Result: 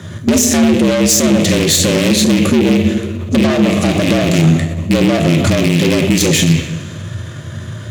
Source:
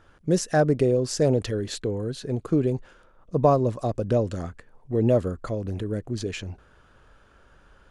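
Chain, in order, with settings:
loose part that buzzes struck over −32 dBFS, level −23 dBFS
EQ curve with evenly spaced ripples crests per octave 1.1, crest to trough 7 dB
coupled-rooms reverb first 0.62 s, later 2 s, from −18 dB, DRR 3.5 dB
downward compressor 6 to 1, threshold −27 dBFS, peak gain reduction 15.5 dB
tube saturation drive 35 dB, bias 0.55
parametric band 860 Hz −13.5 dB 2.9 octaves
frequency shifter +75 Hz
boost into a limiter +33.5 dB
level −1 dB

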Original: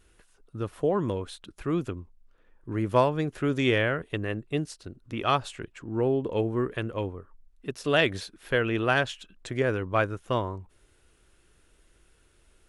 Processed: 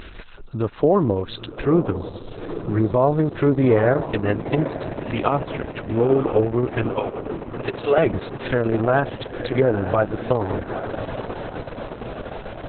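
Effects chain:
0:06.93–0:07.98: high-pass filter 370 Hz 24 dB per octave
treble cut that deepens with the level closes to 1,100 Hz, closed at −23.5 dBFS
0:02.76–0:03.54: low-pass filter 2,900 Hz → 4,900 Hz 24 dB per octave
dynamic equaliser 700 Hz, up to +3 dB, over −43 dBFS, Q 4
upward compression, threshold −35 dBFS
feedback delay with all-pass diffusion 901 ms, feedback 70%, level −12 dB
boost into a limiter +15.5 dB
level −5.5 dB
Opus 6 kbit/s 48,000 Hz

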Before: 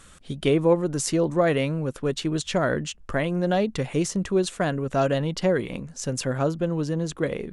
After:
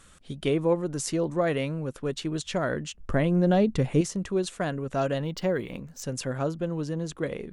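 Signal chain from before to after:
0:02.97–0:04.01: low-shelf EQ 500 Hz +9 dB
0:05.24–0:06.03: linearly interpolated sample-rate reduction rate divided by 2×
level −4.5 dB

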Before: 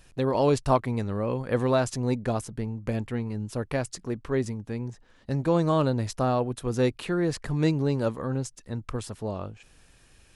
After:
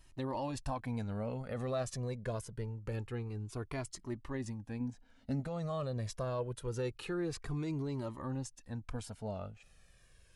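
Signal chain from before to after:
brickwall limiter −19.5 dBFS, peak gain reduction 10.5 dB
0:04.80–0:05.40: parametric band 260 Hz +10 dB 0.41 octaves
flanger whose copies keep moving one way falling 0.25 Hz
level −4 dB

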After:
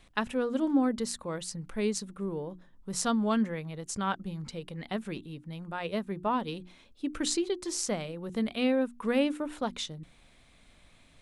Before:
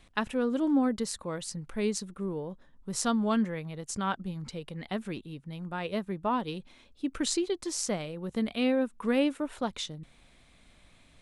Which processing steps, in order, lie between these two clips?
mains-hum notches 60/120/180/240/300/360 Hz

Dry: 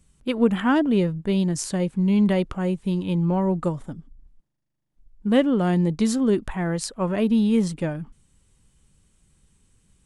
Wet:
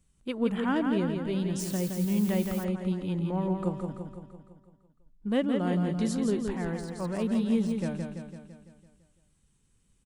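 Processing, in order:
repeating echo 168 ms, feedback 57%, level −5.5 dB
0:01.59–0:02.63: background noise blue −36 dBFS
0:06.68–0:07.77: de-essing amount 80%
level −8.5 dB

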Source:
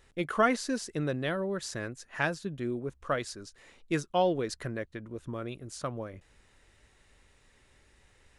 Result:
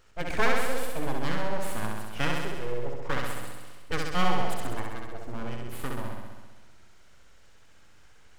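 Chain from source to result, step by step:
formants moved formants −4 semitones
full-wave rectification
flutter between parallel walls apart 11.3 metres, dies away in 1.3 s
level +2.5 dB

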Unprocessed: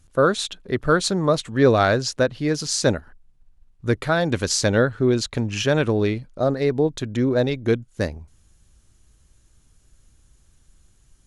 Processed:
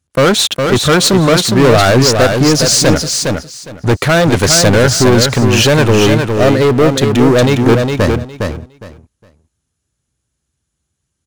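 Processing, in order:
high-pass filter 66 Hz 24 dB per octave
leveller curve on the samples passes 5
repeating echo 410 ms, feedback 19%, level −5 dB
level −1 dB

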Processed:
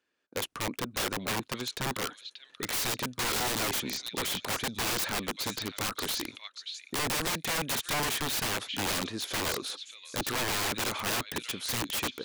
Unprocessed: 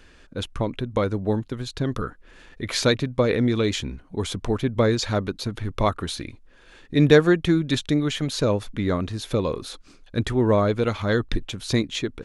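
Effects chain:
noise gate −44 dBFS, range −25 dB
high-pass filter 270 Hz 12 dB per octave
echo through a band-pass that steps 585 ms, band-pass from 3,200 Hz, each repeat 0.7 octaves, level −6 dB
brickwall limiter −13.5 dBFS, peak gain reduction 11 dB
wrap-around overflow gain 25 dB

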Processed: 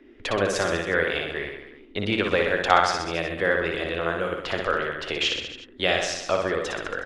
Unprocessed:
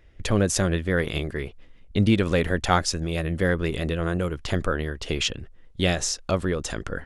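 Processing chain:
three-way crossover with the lows and the highs turned down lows −17 dB, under 420 Hz, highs −16 dB, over 4,300 Hz
reverse bouncing-ball delay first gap 60 ms, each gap 1.1×, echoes 5
noise in a band 230–410 Hz −55 dBFS
level +3 dB

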